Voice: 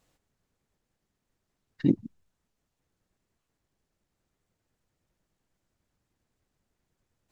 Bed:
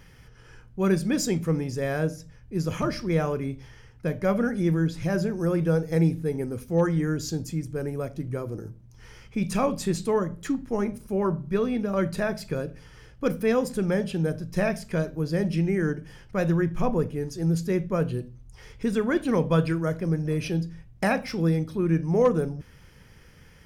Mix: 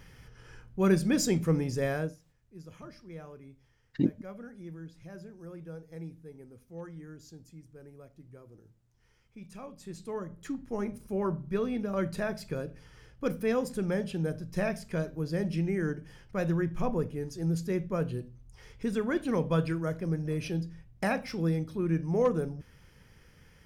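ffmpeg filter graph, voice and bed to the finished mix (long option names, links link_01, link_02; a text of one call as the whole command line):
ffmpeg -i stem1.wav -i stem2.wav -filter_complex "[0:a]adelay=2150,volume=-3.5dB[link_01];[1:a]volume=13.5dB,afade=type=out:start_time=1.84:duration=0.36:silence=0.112202,afade=type=in:start_time=9.75:duration=1.26:silence=0.177828[link_02];[link_01][link_02]amix=inputs=2:normalize=0" out.wav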